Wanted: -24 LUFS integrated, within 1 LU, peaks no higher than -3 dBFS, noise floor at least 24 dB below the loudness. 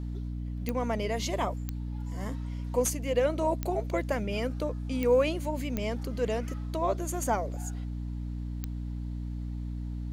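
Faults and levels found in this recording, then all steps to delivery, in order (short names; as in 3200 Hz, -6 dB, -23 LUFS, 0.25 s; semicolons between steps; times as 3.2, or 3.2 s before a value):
clicks 6; hum 60 Hz; harmonics up to 300 Hz; hum level -32 dBFS; loudness -31.5 LUFS; peak -14.0 dBFS; loudness target -24.0 LUFS
-> de-click; de-hum 60 Hz, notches 5; gain +7.5 dB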